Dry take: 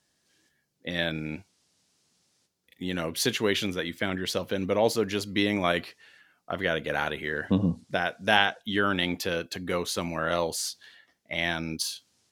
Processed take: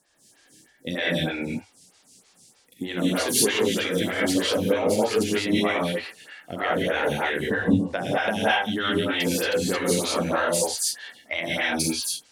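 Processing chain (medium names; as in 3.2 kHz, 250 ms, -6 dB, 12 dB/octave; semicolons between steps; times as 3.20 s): peaking EQ 8.9 kHz +7.5 dB 0.8 oct; compression 5:1, threshold -31 dBFS, peak gain reduction 14.5 dB; gated-style reverb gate 240 ms rising, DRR -6.5 dB; lamp-driven phase shifter 3.2 Hz; trim +7.5 dB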